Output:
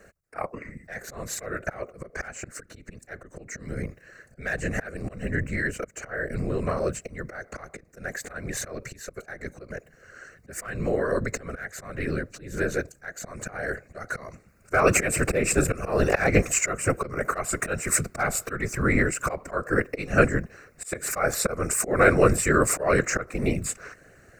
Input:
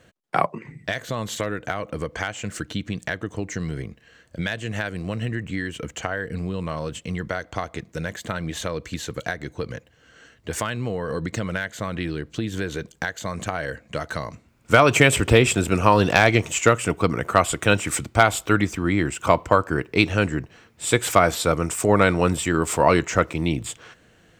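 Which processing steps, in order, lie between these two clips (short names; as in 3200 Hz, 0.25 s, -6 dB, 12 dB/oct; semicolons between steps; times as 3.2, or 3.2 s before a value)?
auto swell 0.27 s; fixed phaser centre 890 Hz, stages 6; whisperiser; gain +5 dB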